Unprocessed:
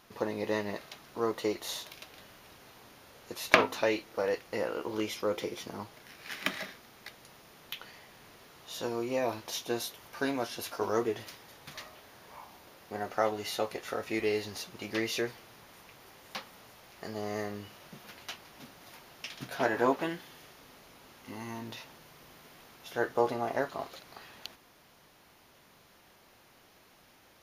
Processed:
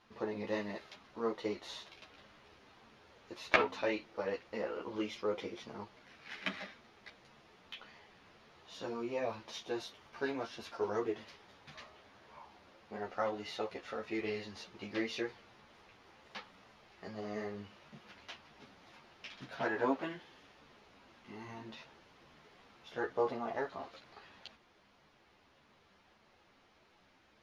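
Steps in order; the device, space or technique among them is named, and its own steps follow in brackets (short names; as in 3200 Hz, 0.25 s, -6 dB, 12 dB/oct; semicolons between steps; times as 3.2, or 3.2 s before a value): string-machine ensemble chorus (ensemble effect; LPF 4300 Hz 12 dB/oct); 0.47–0.96 high shelf 4900 Hz +6 dB; gain -2.5 dB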